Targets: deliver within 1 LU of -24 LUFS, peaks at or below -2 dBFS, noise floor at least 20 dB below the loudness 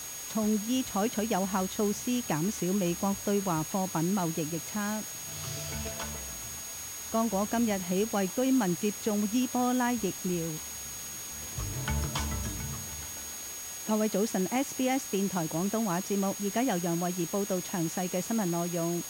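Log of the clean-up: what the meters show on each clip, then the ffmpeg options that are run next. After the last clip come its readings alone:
steady tone 6600 Hz; tone level -40 dBFS; noise floor -40 dBFS; noise floor target -51 dBFS; loudness -31.0 LUFS; peak -17.0 dBFS; loudness target -24.0 LUFS
-> -af "bandreject=f=6.6k:w=30"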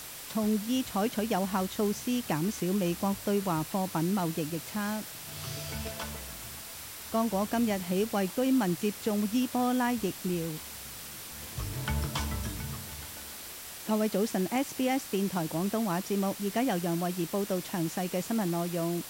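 steady tone none; noise floor -43 dBFS; noise floor target -52 dBFS
-> -af "afftdn=nr=9:nf=-43"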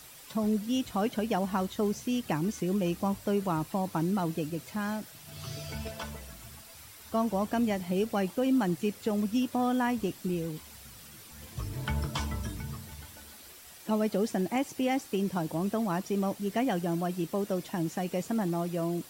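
noise floor -50 dBFS; noise floor target -52 dBFS
-> -af "afftdn=nr=6:nf=-50"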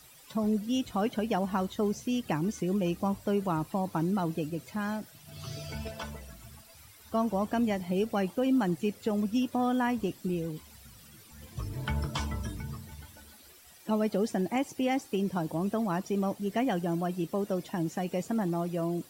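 noise floor -55 dBFS; loudness -31.5 LUFS; peak -18.5 dBFS; loudness target -24.0 LUFS
-> -af "volume=7.5dB"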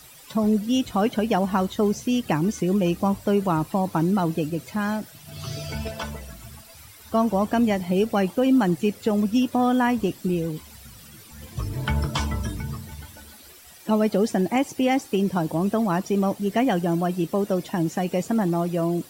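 loudness -24.0 LUFS; peak -11.0 dBFS; noise floor -47 dBFS

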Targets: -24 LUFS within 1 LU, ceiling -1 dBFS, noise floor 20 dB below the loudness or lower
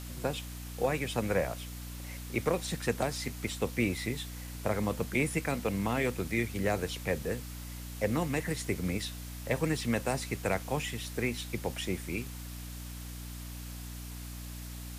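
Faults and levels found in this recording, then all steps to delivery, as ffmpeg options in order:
hum 60 Hz; harmonics up to 300 Hz; hum level -40 dBFS; noise floor -42 dBFS; noise floor target -54 dBFS; loudness -34.0 LUFS; peak -17.0 dBFS; loudness target -24.0 LUFS
-> -af "bandreject=f=60:t=h:w=6,bandreject=f=120:t=h:w=6,bandreject=f=180:t=h:w=6,bandreject=f=240:t=h:w=6,bandreject=f=300:t=h:w=6"
-af "afftdn=nr=12:nf=-42"
-af "volume=10dB"

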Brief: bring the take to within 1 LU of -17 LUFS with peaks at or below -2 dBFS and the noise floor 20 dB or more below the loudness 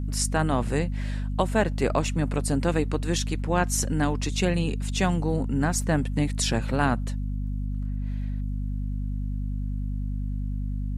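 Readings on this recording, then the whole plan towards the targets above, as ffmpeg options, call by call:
hum 50 Hz; harmonics up to 250 Hz; hum level -26 dBFS; loudness -27.0 LUFS; peak -8.0 dBFS; loudness target -17.0 LUFS
-> -af "bandreject=f=50:t=h:w=6,bandreject=f=100:t=h:w=6,bandreject=f=150:t=h:w=6,bandreject=f=200:t=h:w=6,bandreject=f=250:t=h:w=6"
-af "volume=10dB,alimiter=limit=-2dB:level=0:latency=1"

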